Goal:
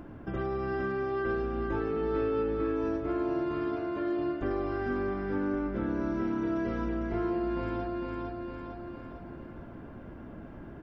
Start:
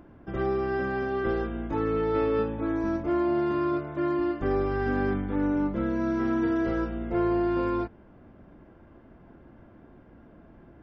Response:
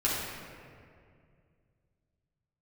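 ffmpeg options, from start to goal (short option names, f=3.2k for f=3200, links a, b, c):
-filter_complex "[0:a]aecho=1:1:454|908|1362|1816|2270:0.562|0.219|0.0855|0.0334|0.013,acompressor=threshold=-43dB:ratio=2,asplit=2[a][b];[1:a]atrim=start_sample=2205[c];[b][c]afir=irnorm=-1:irlink=0,volume=-18.5dB[d];[a][d]amix=inputs=2:normalize=0,volume=4dB"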